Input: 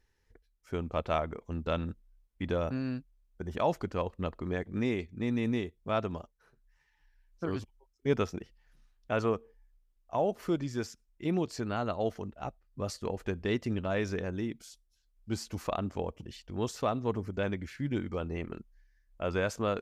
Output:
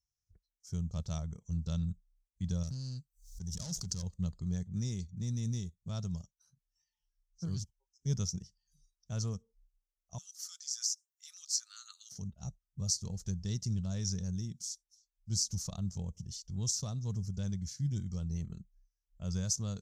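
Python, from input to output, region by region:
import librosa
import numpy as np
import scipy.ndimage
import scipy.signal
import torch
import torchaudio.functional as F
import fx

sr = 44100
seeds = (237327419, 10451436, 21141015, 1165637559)

y = fx.chain(x, sr, fx.high_shelf(hz=2500.0, db=7.5),
    fx.tube_stage(drive_db=33.0, bias=0.65),
    fx.pre_swell(db_per_s=92.0), at=(2.63, 4.03))
y = fx.chain(y, sr, fx.cheby1_highpass(hz=1200.0, order=6),
    fx.high_shelf(hz=6400.0, db=6.0), at=(10.18, 12.12))
y = fx.highpass(y, sr, hz=51.0, slope=6)
y = fx.noise_reduce_blind(y, sr, reduce_db=20)
y = fx.curve_eq(y, sr, hz=(180.0, 270.0, 2500.0, 5900.0, 11000.0), db=(0, -22, -25, 12, -4))
y = y * librosa.db_to_amplitude(4.0)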